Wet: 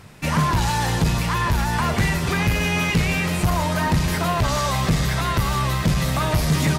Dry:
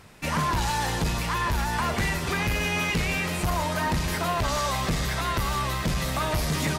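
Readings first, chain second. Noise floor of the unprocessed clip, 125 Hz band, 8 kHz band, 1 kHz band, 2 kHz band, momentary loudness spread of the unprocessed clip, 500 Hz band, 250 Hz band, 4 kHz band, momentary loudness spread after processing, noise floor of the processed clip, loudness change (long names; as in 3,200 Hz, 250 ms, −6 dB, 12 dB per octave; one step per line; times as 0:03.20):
−30 dBFS, +8.5 dB, +3.5 dB, +3.5 dB, +3.5 dB, 2 LU, +4.0 dB, +7.5 dB, +3.5 dB, 2 LU, −25 dBFS, +5.0 dB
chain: parametric band 130 Hz +6.5 dB 1.3 octaves
level +3.5 dB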